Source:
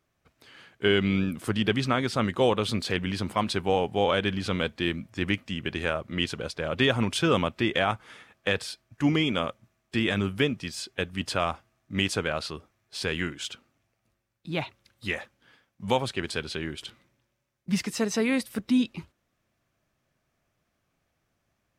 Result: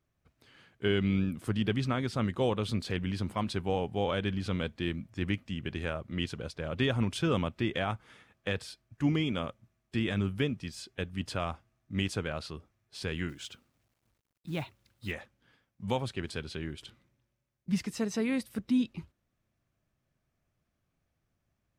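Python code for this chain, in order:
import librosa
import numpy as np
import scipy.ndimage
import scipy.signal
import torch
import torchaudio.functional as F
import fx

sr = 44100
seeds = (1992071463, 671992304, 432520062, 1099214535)

y = fx.low_shelf(x, sr, hz=230.0, db=9.5)
y = fx.quant_companded(y, sr, bits=6, at=(13.28, 15.11), fade=0.02)
y = y * 10.0 ** (-8.5 / 20.0)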